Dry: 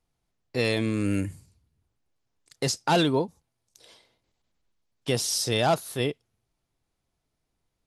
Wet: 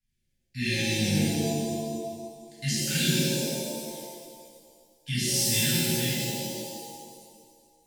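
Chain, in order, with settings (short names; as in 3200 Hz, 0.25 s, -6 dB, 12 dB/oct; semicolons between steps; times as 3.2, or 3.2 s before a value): Chebyshev band-stop 250–1600 Hz, order 5; shimmer reverb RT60 1.8 s, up +7 st, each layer -2 dB, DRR -9.5 dB; gain -7.5 dB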